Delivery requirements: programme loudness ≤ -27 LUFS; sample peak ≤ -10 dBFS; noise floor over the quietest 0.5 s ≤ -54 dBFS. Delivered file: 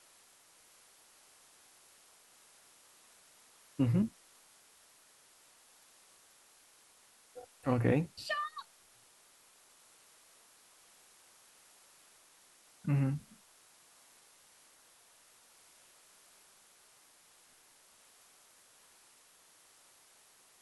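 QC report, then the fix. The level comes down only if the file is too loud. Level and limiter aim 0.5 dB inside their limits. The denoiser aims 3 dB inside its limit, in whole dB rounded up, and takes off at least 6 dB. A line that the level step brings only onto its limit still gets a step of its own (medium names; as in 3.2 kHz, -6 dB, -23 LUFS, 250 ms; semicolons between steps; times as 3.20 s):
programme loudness -34.0 LUFS: pass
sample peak -16.5 dBFS: pass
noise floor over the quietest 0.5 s -64 dBFS: pass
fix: none needed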